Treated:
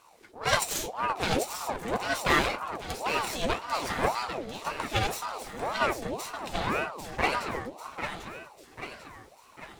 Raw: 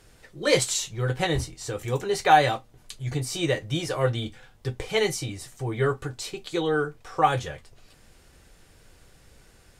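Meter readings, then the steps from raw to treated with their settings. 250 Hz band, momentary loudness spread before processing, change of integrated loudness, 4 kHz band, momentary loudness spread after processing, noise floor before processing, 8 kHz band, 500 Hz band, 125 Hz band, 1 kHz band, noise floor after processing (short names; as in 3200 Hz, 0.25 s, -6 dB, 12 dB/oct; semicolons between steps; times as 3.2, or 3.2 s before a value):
-4.5 dB, 14 LU, -4.0 dB, -2.5 dB, 15 LU, -56 dBFS, -4.0 dB, -6.0 dB, -10.0 dB, -3.5 dB, -56 dBFS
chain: minimum comb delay 0.62 ms; split-band echo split 360 Hz, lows 0.309 s, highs 0.795 s, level -7 dB; ring modulator with a swept carrier 710 Hz, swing 55%, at 1.9 Hz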